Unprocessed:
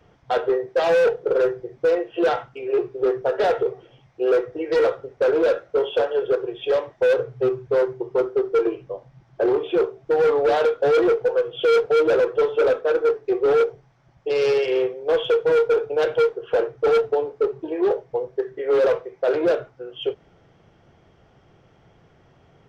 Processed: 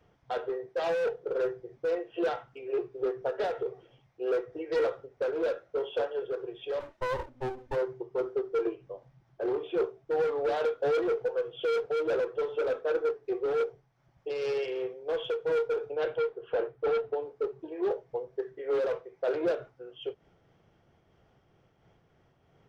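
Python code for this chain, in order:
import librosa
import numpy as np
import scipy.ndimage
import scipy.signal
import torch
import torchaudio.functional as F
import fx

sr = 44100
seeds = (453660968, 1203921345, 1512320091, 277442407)

y = fx.lower_of_two(x, sr, delay_ms=3.3, at=(6.79, 7.75), fade=0.02)
y = fx.lowpass(y, sr, hz=4000.0, slope=12, at=(15.91, 17.22))
y = fx.am_noise(y, sr, seeds[0], hz=5.7, depth_pct=55)
y = F.gain(torch.from_numpy(y), -7.5).numpy()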